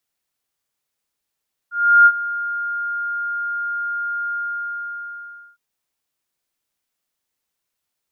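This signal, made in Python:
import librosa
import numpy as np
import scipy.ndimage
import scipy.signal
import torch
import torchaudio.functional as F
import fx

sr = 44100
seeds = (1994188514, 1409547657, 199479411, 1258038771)

y = fx.adsr_tone(sr, wave='sine', hz=1410.0, attack_ms=348.0, decay_ms=57.0, sustain_db=-16.0, held_s=2.63, release_ms=1230.0, level_db=-5.5)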